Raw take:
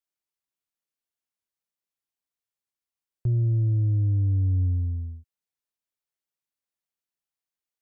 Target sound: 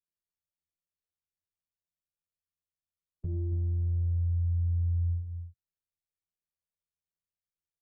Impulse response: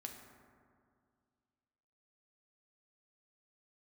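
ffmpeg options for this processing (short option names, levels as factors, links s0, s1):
-filter_complex "[0:a]afftfilt=real='hypot(re,im)*cos(PI*b)':imag='0':win_size=2048:overlap=0.75,firequalizer=gain_entry='entry(170,0);entry(240,-22);entry(350,-4);entry(760,-10)':delay=0.05:min_phase=1,acrossover=split=130|200[s0][s1][s2];[s0]acompressor=threshold=0.0224:ratio=6[s3];[s3][s1][s2]amix=inputs=3:normalize=0,alimiter=level_in=2.66:limit=0.0631:level=0:latency=1:release=24,volume=0.376,equalizer=f=130:t=o:w=0.55:g=5,asplit=2[s4][s5];[s5]adynamicsmooth=sensitivity=3.5:basefreq=550,volume=0.891[s6];[s4][s6]amix=inputs=2:normalize=0,aecho=1:1:84.55|277:0.282|0.447"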